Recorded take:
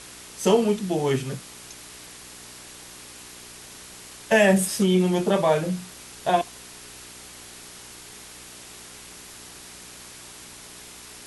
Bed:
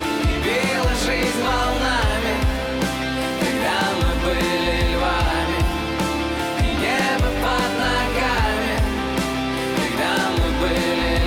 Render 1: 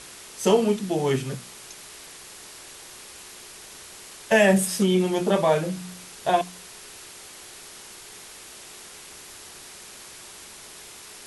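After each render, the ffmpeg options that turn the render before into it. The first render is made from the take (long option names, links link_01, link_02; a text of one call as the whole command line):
ffmpeg -i in.wav -af "bandreject=frequency=60:width_type=h:width=4,bandreject=frequency=120:width_type=h:width=4,bandreject=frequency=180:width_type=h:width=4,bandreject=frequency=240:width_type=h:width=4,bandreject=frequency=300:width_type=h:width=4" out.wav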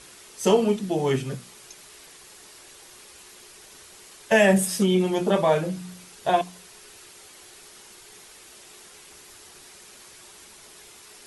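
ffmpeg -i in.wav -af "afftdn=noise_reduction=6:noise_floor=-44" out.wav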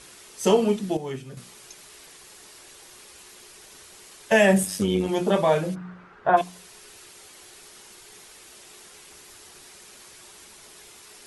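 ffmpeg -i in.wav -filter_complex "[0:a]asettb=1/sr,asplit=3[link_01][link_02][link_03];[link_01]atrim=end=4.634[link_04];[link_02]atrim=start=4.63:end=5.09,asetpts=PTS-STARTPTS,afade=type=in:duration=0.004:curve=qsin,afade=type=out:start_time=0.456:duration=0.004:curve=qsin,tremolo=f=100:d=0.621[link_05];[link_03]atrim=start=5.086[link_06];[link_04][link_05]acrossfade=duration=0.004:curve1=hsin:curve2=qsin[link_07];[link_07][link_06]acrossfade=duration=0.004:curve1=qsin:curve2=hsin,asplit=3[link_08][link_09][link_10];[link_08]afade=type=out:start_time=5.74:duration=0.02[link_11];[link_09]lowpass=frequency=1400:width_type=q:width=2.6,afade=type=in:start_time=5.74:duration=0.02,afade=type=out:start_time=6.36:duration=0.02[link_12];[link_10]afade=type=in:start_time=6.36:duration=0.02[link_13];[link_11][link_12][link_13]amix=inputs=3:normalize=0,asplit=3[link_14][link_15][link_16];[link_14]atrim=end=0.972[link_17];[link_15]atrim=start=0.968:end=1.372,asetpts=PTS-STARTPTS,volume=-9.5dB[link_18];[link_16]atrim=start=1.368[link_19];[link_17][link_18]acrossfade=duration=0.004:curve1=hsin:curve2=hsin[link_20];[link_20][link_19]acrossfade=duration=0.004:curve1=hsin:curve2=hsin" out.wav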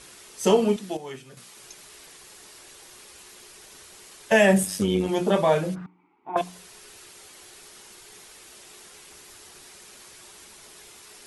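ffmpeg -i in.wav -filter_complex "[0:a]asettb=1/sr,asplit=3[link_01][link_02][link_03];[link_01]atrim=end=0.764[link_04];[link_02]atrim=start=0.76:end=1.57,asetpts=PTS-STARTPTS,afade=type=in:duration=0.004:curve=qsin,afade=type=out:start_time=0.806:duration=0.004:curve=qsin,lowshelf=frequency=360:gain=-11.5[link_05];[link_03]atrim=start=1.566[link_06];[link_04][link_05]acrossfade=duration=0.004:curve1=hsin:curve2=qsin[link_07];[link_07][link_06]acrossfade=duration=0.004:curve1=qsin:curve2=hsin,asettb=1/sr,asplit=3[link_08][link_09][link_10];[link_08]atrim=end=5.864[link_11];[link_09]atrim=start=5.86:end=6.36,asetpts=PTS-STARTPTS,afade=type=in:duration=0.004:curve=qsin,afade=type=out:start_time=0.496:duration=0.004:curve=qsin,asplit=3[link_12][link_13][link_14];[link_12]bandpass=frequency=300:width_type=q:width=8,volume=0dB[link_15];[link_13]bandpass=frequency=870:width_type=q:width=8,volume=-6dB[link_16];[link_14]bandpass=frequency=2240:width_type=q:width=8,volume=-9dB[link_17];[link_15][link_16][link_17]amix=inputs=3:normalize=0[link_18];[link_10]atrim=start=6.356[link_19];[link_11][link_18]acrossfade=duration=0.004:curve1=hsin:curve2=qsin[link_20];[link_20][link_19]acrossfade=duration=0.004:curve1=qsin:curve2=hsin" out.wav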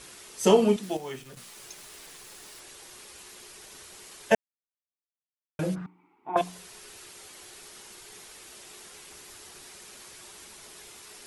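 ffmpeg -i in.wav -filter_complex "[0:a]asettb=1/sr,asplit=3[link_01][link_02][link_03];[link_01]atrim=end=0.834[link_04];[link_02]atrim=start=0.83:end=2.6,asetpts=PTS-STARTPTS,afade=type=in:duration=0.004:curve=qsin,afade=type=out:start_time=1.766:duration=0.004:curve=qsin,acrusher=bits=9:dc=4:mix=0:aa=0.000001[link_05];[link_03]atrim=start=2.596[link_06];[link_04][link_05]acrossfade=duration=0.004:curve1=hsin:curve2=qsin[link_07];[link_07][link_06]acrossfade=duration=0.004:curve1=qsin:curve2=hsin,asplit=3[link_08][link_09][link_10];[link_08]atrim=end=4.35,asetpts=PTS-STARTPTS,afade=type=out:start_time=4.346:duration=0.004:curve=hsin[link_11];[link_09]atrim=start=4.35:end=5.59,asetpts=PTS-STARTPTS,volume=0[link_12];[link_10]atrim=start=5.59,asetpts=PTS-STARTPTS,afade=type=in:duration=0.004:curve=hsin[link_13];[link_11][link_12][link_13]concat=n=3:v=0:a=1" out.wav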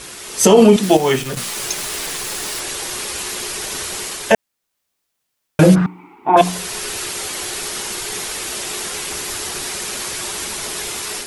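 ffmpeg -i in.wav -af "dynaudnorm=framelen=200:gausssize=3:maxgain=9dB,alimiter=level_in=13dB:limit=-1dB:release=50:level=0:latency=1" out.wav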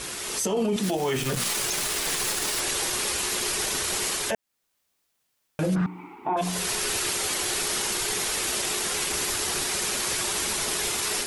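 ffmpeg -i in.wav -af "acompressor=threshold=-18dB:ratio=3,alimiter=limit=-18dB:level=0:latency=1:release=16" out.wav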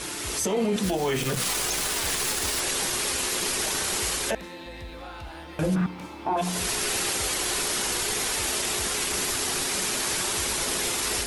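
ffmpeg -i in.wav -i bed.wav -filter_complex "[1:a]volume=-20dB[link_01];[0:a][link_01]amix=inputs=2:normalize=0" out.wav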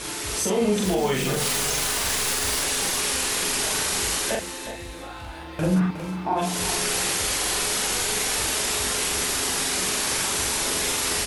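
ffmpeg -i in.wav -filter_complex "[0:a]asplit=2[link_01][link_02];[link_02]adelay=43,volume=-2dB[link_03];[link_01][link_03]amix=inputs=2:normalize=0,aecho=1:1:363|726|1089:0.282|0.0874|0.0271" out.wav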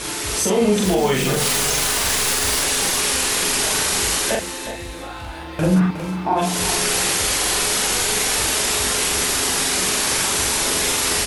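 ffmpeg -i in.wav -af "volume=5dB" out.wav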